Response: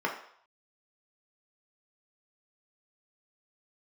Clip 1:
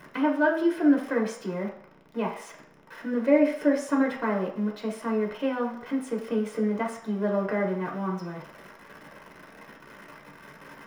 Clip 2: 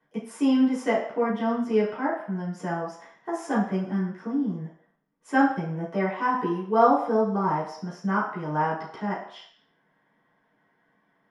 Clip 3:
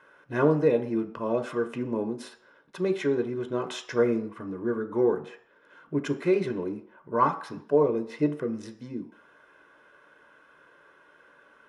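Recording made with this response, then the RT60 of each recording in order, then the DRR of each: 1; 0.65, 0.65, 0.65 seconds; −1.0, −9.5, 7.0 decibels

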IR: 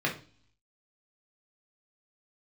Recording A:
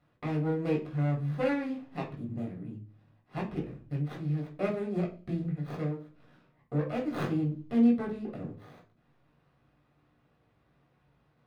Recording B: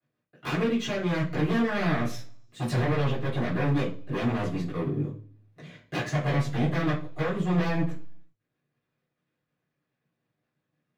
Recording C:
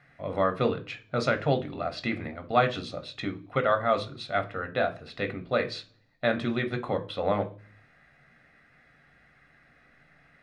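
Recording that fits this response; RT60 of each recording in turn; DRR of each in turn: A; 0.40, 0.40, 0.40 seconds; −2.5, −12.0, 6.5 decibels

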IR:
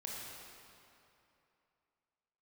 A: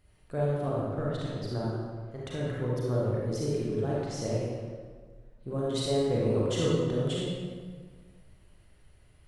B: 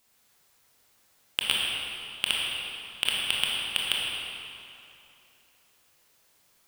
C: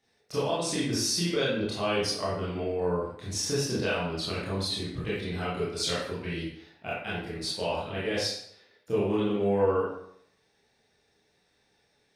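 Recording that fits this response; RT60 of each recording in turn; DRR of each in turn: B; 1.6, 2.9, 0.70 seconds; −6.0, −4.0, −8.5 decibels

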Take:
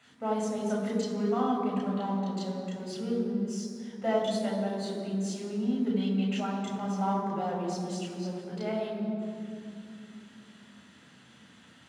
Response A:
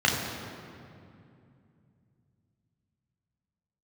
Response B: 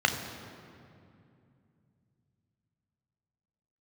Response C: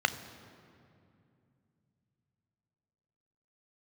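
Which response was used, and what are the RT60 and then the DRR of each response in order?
A; 2.5, 2.5, 2.5 seconds; −2.5, 4.5, 10.5 decibels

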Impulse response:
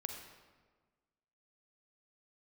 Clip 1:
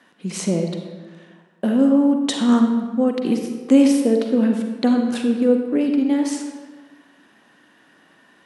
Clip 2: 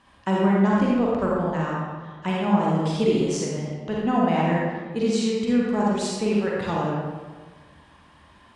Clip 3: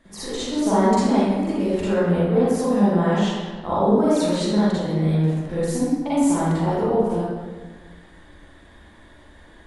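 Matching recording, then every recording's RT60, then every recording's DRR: 1; 1.4, 1.4, 1.4 seconds; 3.5, −5.0, −11.5 decibels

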